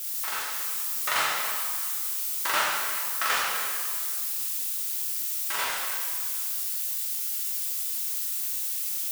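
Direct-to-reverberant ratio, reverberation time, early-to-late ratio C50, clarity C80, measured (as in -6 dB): -5.0 dB, 2.0 s, -0.5 dB, 1.5 dB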